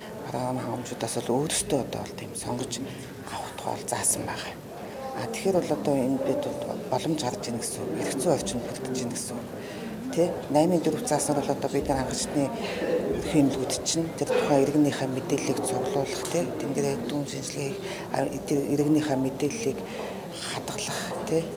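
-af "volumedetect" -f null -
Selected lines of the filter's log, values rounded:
mean_volume: -27.7 dB
max_volume: -7.9 dB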